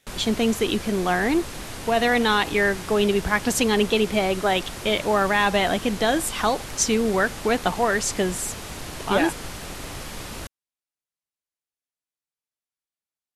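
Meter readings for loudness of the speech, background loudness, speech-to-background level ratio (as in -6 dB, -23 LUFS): -22.5 LUFS, -35.0 LUFS, 12.5 dB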